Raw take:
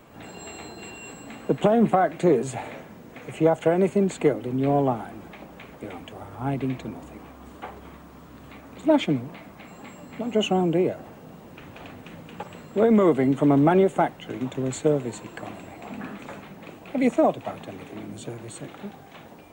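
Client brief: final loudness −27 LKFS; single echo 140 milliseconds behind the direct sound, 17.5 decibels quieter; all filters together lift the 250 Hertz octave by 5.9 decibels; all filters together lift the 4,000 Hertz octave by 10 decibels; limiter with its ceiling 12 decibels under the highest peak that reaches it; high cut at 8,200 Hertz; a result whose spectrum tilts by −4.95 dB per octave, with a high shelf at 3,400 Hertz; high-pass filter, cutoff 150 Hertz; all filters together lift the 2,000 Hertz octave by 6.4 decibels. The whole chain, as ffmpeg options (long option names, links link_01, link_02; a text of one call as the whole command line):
ffmpeg -i in.wav -af "highpass=150,lowpass=8200,equalizer=frequency=250:width_type=o:gain=8,equalizer=frequency=2000:width_type=o:gain=3.5,highshelf=frequency=3400:gain=8,equalizer=frequency=4000:width_type=o:gain=7.5,alimiter=limit=-15.5dB:level=0:latency=1,aecho=1:1:140:0.133" out.wav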